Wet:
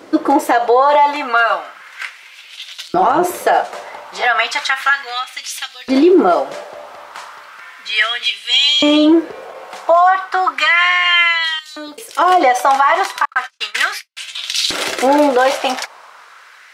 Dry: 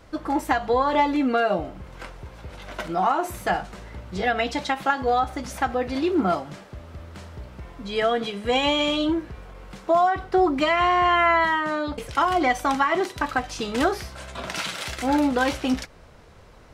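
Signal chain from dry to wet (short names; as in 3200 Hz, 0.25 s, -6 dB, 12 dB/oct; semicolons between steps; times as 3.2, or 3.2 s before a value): 11.59–12.19 pre-emphasis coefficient 0.9; 13.25–14.17 gate -28 dBFS, range -55 dB; LFO high-pass saw up 0.34 Hz 300–4300 Hz; 2.72–3.25 AM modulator 170 Hz, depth 35%; maximiser +14 dB; gain -2.5 dB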